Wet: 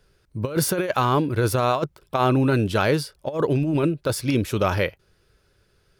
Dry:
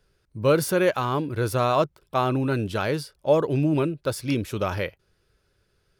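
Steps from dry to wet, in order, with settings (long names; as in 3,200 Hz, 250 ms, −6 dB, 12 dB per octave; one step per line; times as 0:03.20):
compressor whose output falls as the input rises −23 dBFS, ratio −0.5
level +3.5 dB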